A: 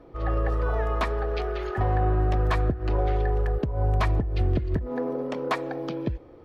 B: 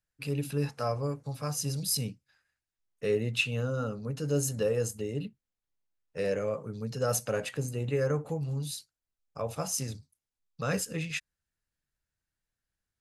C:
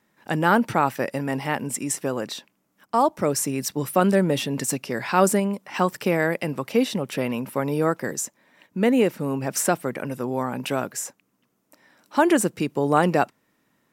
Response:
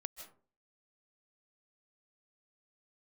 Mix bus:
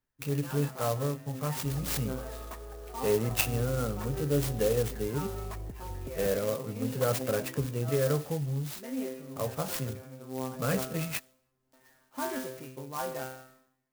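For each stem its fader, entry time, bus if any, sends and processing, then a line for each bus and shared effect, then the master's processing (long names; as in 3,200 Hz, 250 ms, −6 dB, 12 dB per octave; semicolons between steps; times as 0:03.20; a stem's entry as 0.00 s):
−16.5 dB, 1.50 s, no send, no processing
+1.0 dB, 0.00 s, no send, no processing
−10.0 dB, 0.00 s, send −4 dB, automatic gain control gain up to 14.5 dB; tuned comb filter 130 Hz, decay 0.38 s, harmonics all, mix 100%; level that may fall only so fast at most 87 dB per second; automatic ducking −13 dB, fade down 0.20 s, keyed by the second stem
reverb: on, RT60 0.40 s, pre-delay 115 ms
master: high-shelf EQ 9,000 Hz −9.5 dB; converter with an unsteady clock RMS 0.068 ms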